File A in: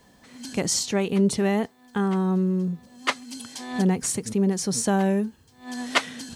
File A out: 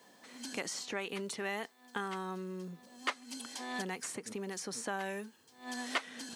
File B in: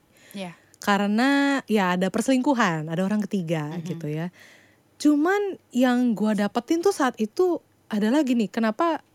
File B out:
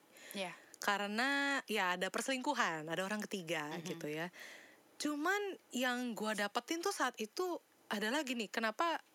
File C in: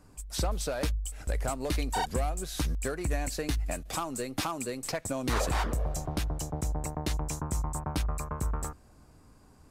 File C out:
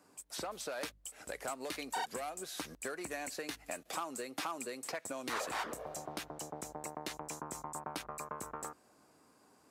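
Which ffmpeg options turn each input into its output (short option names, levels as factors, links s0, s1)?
-filter_complex "[0:a]highpass=310,acrossover=split=1100|2500[s0][s1][s2];[s0]acompressor=threshold=0.0126:ratio=4[s3];[s1]acompressor=threshold=0.02:ratio=4[s4];[s2]acompressor=threshold=0.00891:ratio=4[s5];[s3][s4][s5]amix=inputs=3:normalize=0,volume=0.75"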